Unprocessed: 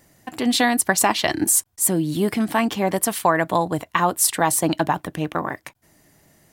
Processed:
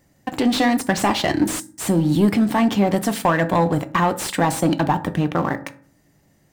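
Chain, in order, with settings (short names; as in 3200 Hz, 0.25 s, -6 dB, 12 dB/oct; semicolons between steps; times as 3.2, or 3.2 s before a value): low shelf 370 Hz +6 dB; sample leveller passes 2; in parallel at 0 dB: compressor, threshold -20 dBFS, peak gain reduction 12 dB; on the sum: bell 11000 Hz -7.5 dB 0.41 oct; on a send at -9 dB: reverb RT60 0.50 s, pre-delay 3 ms; on the sum: slew limiter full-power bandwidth 890 Hz; gain -8.5 dB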